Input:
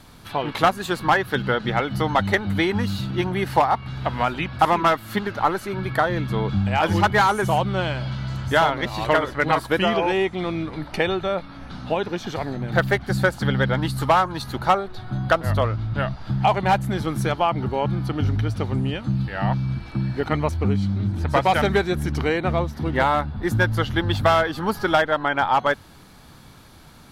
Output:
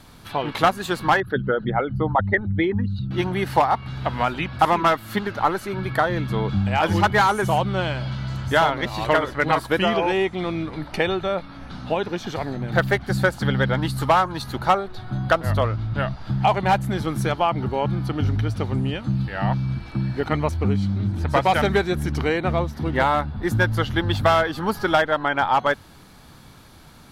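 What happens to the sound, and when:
1.20–3.11 s: resonances exaggerated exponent 2

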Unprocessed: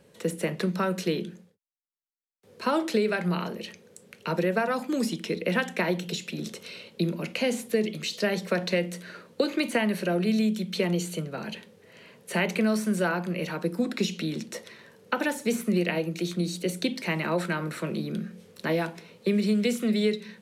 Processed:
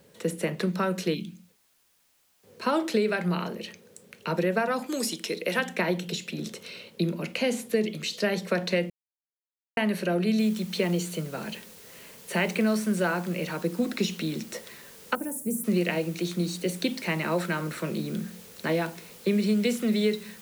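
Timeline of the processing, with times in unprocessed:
1.14–1.49 s: time-frequency box 340–2100 Hz -16 dB
4.86–5.59 s: tone controls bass -11 dB, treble +8 dB
8.90–9.77 s: mute
10.39 s: noise floor step -67 dB -50 dB
15.15–15.64 s: FFT filter 200 Hz 0 dB, 3.9 kHz -27 dB, 9.4 kHz +7 dB

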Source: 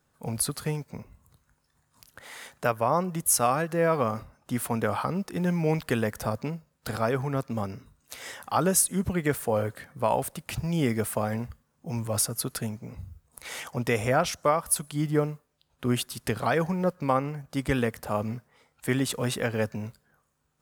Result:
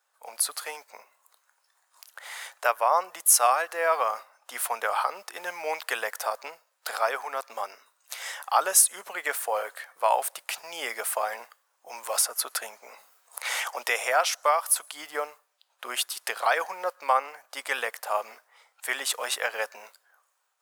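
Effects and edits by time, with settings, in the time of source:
12.03–14.81 s: three bands compressed up and down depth 40%
whole clip: high-pass 660 Hz 24 dB/octave; level rider gain up to 4.5 dB

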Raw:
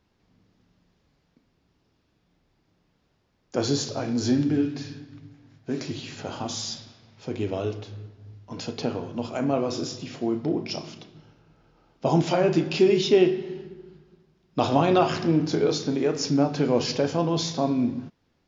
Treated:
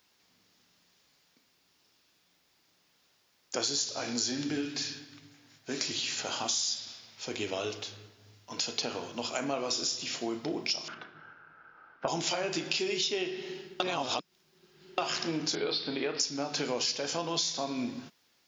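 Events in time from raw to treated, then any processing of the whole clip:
10.88–12.08 s: resonant low-pass 1.5 kHz, resonance Q 6.7
13.80–14.98 s: reverse
15.55–16.20 s: steep low-pass 4.7 kHz 72 dB/octave
whole clip: tilt EQ +4.5 dB/octave; compression 8:1, threshold -28 dBFS

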